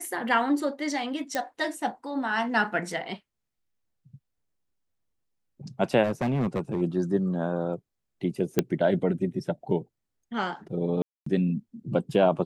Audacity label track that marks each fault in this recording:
1.350000	1.350000	pop -13 dBFS
6.030000	6.820000	clipped -22.5 dBFS
8.590000	8.590000	pop -7 dBFS
11.020000	11.260000	gap 0.244 s

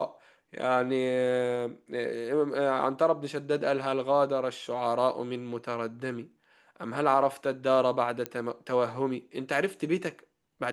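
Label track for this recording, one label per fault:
8.260000	8.260000	pop -16 dBFS

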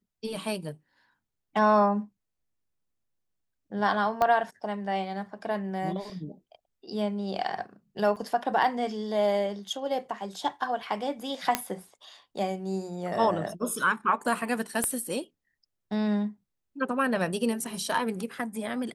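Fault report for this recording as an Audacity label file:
4.220000	4.220000	pop -13 dBFS
8.160000	8.170000	gap 6.1 ms
11.550000	11.550000	pop -7 dBFS
14.840000	14.840000	pop -14 dBFS

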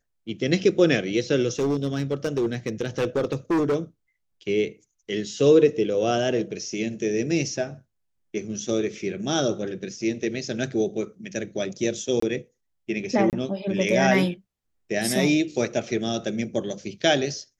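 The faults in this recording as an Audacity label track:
1.520000	3.760000	clipped -19 dBFS
12.200000	12.220000	gap 24 ms
13.300000	13.330000	gap 28 ms

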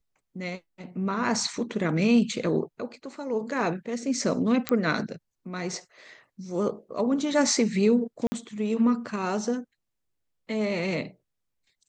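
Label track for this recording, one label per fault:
4.690000	4.690000	pop -9 dBFS
8.270000	8.320000	gap 50 ms

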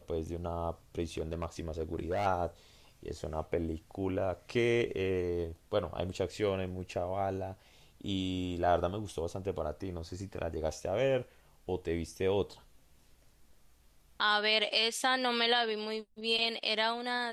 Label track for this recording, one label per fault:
1.170000	2.260000	clipped -28.5 dBFS

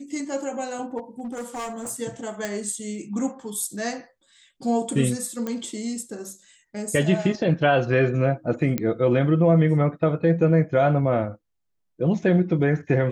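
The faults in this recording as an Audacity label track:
0.970000	1.910000	clipped -28 dBFS
2.450000	2.450000	pop -13 dBFS
5.470000	5.470000	pop -16 dBFS
8.780000	8.780000	pop -10 dBFS

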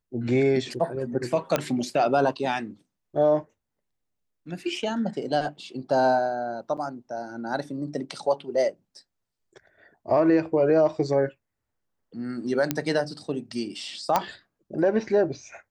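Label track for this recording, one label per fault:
1.560000	1.560000	pop -8 dBFS
6.770000	6.780000	gap 6.4 ms
12.710000	12.710000	pop -8 dBFS
14.160000	14.160000	pop -7 dBFS

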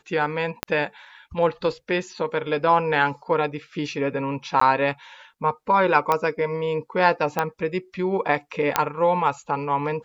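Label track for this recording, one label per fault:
0.630000	0.630000	pop -8 dBFS
4.600000	4.610000	gap 14 ms
6.120000	6.120000	pop -8 dBFS
7.390000	7.390000	pop -8 dBFS
8.760000	8.760000	pop -2 dBFS

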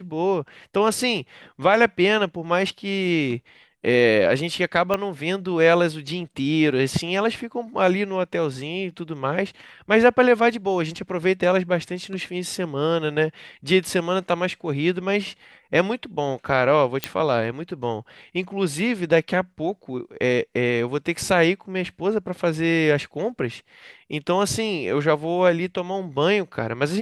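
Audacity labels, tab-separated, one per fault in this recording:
4.940000	4.940000	pop -9 dBFS
17.040000	17.040000	pop -6 dBFS

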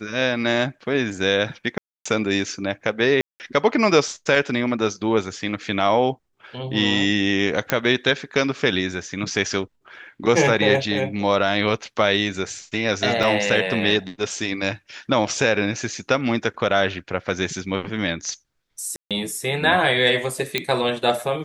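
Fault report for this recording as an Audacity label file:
1.780000	2.060000	gap 0.275 s
3.210000	3.400000	gap 0.189 s
7.700000	7.700000	pop -3 dBFS
13.230000	13.230000	gap 4.1 ms
18.960000	19.110000	gap 0.147 s
20.580000	20.580000	pop -7 dBFS

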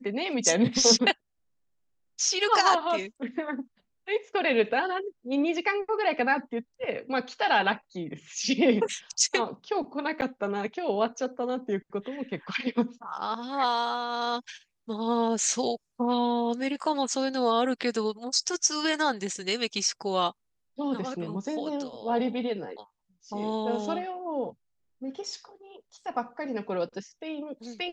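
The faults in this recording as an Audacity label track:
10.210000	10.220000	gap 8.7 ms

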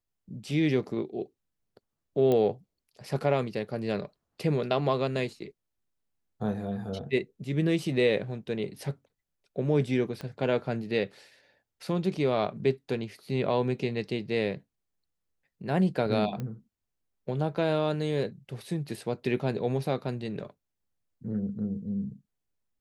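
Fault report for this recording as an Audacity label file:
2.320000	2.320000	pop -16 dBFS
10.210000	10.210000	pop -24 dBFS
16.400000	16.400000	pop -23 dBFS

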